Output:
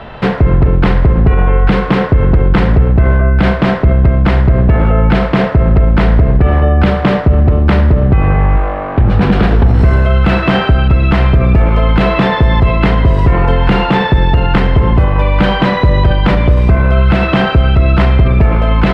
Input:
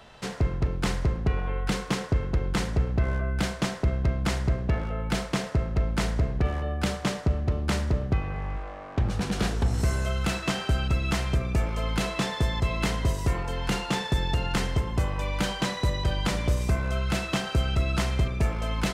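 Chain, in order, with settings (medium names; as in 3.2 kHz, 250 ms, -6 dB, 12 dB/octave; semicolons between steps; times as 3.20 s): distance through air 440 m; loudness maximiser +24 dB; trim -1 dB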